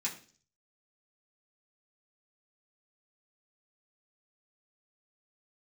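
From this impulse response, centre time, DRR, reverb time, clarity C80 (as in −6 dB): 17 ms, −6.5 dB, 0.45 s, 15.0 dB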